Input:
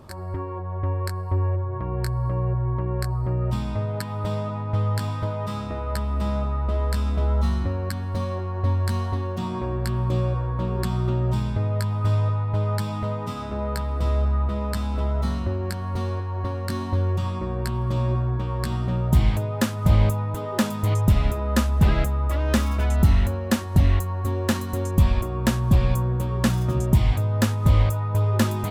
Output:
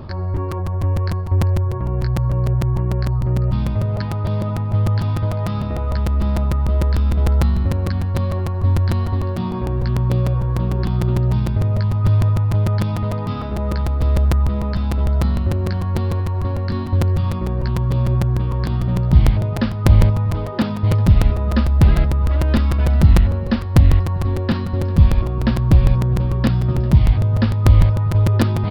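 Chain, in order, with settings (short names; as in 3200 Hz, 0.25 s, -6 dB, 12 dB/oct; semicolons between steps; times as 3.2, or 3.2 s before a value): on a send: echo 0.396 s -19 dB; on the sum: downsampling 11025 Hz; reverse; upward compressor, threshold -20 dBFS; reverse; low shelf 230 Hz +8.5 dB; crackling interface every 0.15 s, samples 256, repeat, from 0.36; gain -1 dB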